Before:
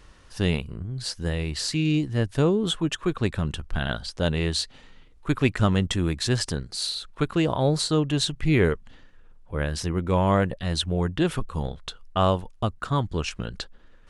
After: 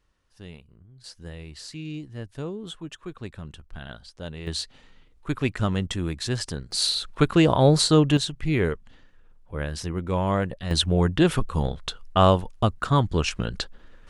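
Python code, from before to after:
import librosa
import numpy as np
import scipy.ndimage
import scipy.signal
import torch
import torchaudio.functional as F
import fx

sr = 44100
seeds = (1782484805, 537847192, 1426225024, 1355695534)

y = fx.gain(x, sr, db=fx.steps((0.0, -19.0), (1.04, -12.0), (4.47, -3.5), (6.71, 5.0), (8.17, -3.0), (10.71, 4.0)))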